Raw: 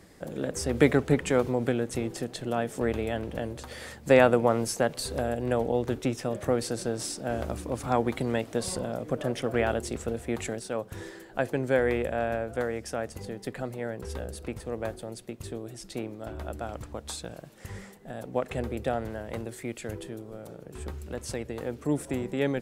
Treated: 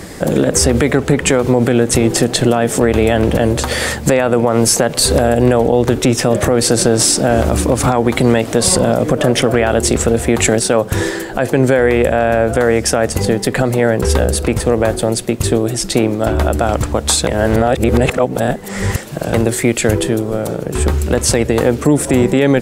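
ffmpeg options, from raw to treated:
-filter_complex "[0:a]asplit=3[a][b][c];[a]atrim=end=17.272[d];[b]atrim=start=17.268:end=19.342,asetpts=PTS-STARTPTS,areverse[e];[c]atrim=start=19.338[f];[d][e]acrossfade=d=0.004:c1=hsin:c2=hsin[g];[g][f]acrossfade=d=0.004:c1=hsin:c2=hsin,equalizer=f=8k:w=1.5:g=2.5,acompressor=threshold=-29dB:ratio=4,alimiter=level_in=24.5dB:limit=-1dB:release=50:level=0:latency=1,volume=-1dB"

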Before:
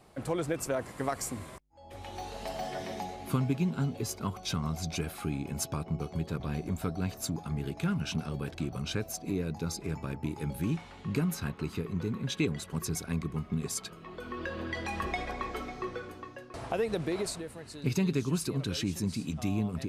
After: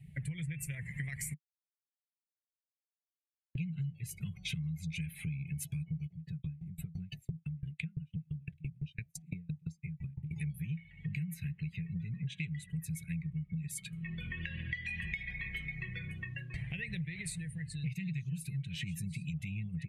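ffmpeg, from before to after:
-filter_complex "[0:a]asplit=3[a][b][c];[a]afade=t=out:st=6.06:d=0.02[d];[b]aeval=exprs='val(0)*pow(10,-34*if(lt(mod(5.9*n/s,1),2*abs(5.9)/1000),1-mod(5.9*n/s,1)/(2*abs(5.9)/1000),(mod(5.9*n/s,1)-2*abs(5.9)/1000)/(1-2*abs(5.9)/1000))/20)':c=same,afade=t=in:st=6.06:d=0.02,afade=t=out:st=10.3:d=0.02[e];[c]afade=t=in:st=10.3:d=0.02[f];[d][e][f]amix=inputs=3:normalize=0,asplit=3[g][h][i];[g]atrim=end=1.34,asetpts=PTS-STARTPTS,afade=t=out:st=1.336:d=0.004:c=hsin[j];[h]atrim=start=1.34:end=3.55,asetpts=PTS-STARTPTS,volume=0[k];[i]atrim=start=3.55,asetpts=PTS-STARTPTS,afade=t=in:d=0.004:c=hsin[l];[j][k][l]concat=n=3:v=0:a=1,afftdn=nr=22:nf=-50,firequalizer=gain_entry='entry(100,0);entry(150,12);entry(250,-22);entry(690,-29);entry(1300,-29);entry(1900,9);entry(2900,5);entry(5000,-12);entry(9100,3)':delay=0.05:min_phase=1,acompressor=threshold=-50dB:ratio=6,volume=12dB"

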